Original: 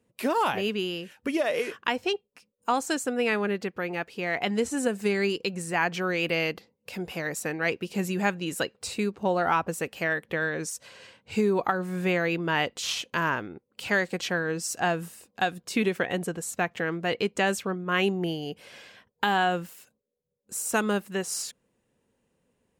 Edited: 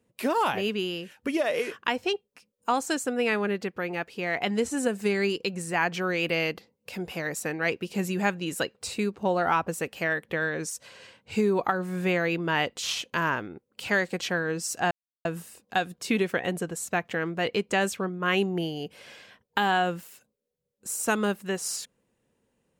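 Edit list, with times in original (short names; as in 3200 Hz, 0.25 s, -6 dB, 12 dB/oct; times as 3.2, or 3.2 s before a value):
14.91 insert silence 0.34 s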